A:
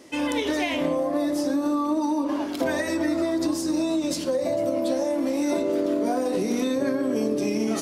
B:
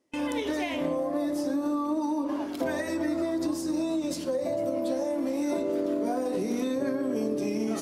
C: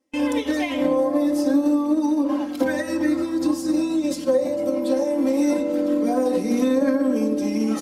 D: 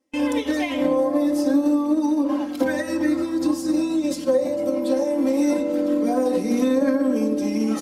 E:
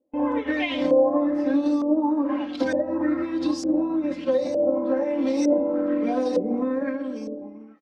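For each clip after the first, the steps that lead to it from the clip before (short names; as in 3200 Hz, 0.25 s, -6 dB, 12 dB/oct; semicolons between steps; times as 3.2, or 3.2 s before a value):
gate with hold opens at -21 dBFS; bell 4200 Hz -3.5 dB 2.6 oct; gain -4 dB
comb 3.8 ms, depth 91%; upward expander 1.5:1, over -38 dBFS; gain +5.5 dB
nothing audible
ending faded out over 1.67 s; LFO low-pass saw up 1.1 Hz 510–6000 Hz; gain -3 dB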